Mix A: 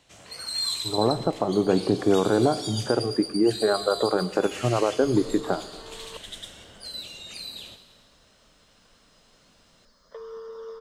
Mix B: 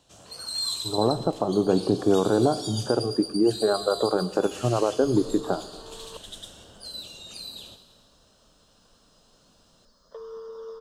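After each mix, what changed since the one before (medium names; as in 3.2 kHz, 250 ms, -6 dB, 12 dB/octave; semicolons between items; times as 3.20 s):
master: add peaking EQ 2.1 kHz -14.5 dB 0.54 oct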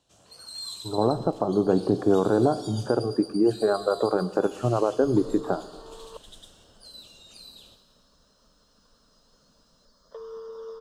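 first sound -8.0 dB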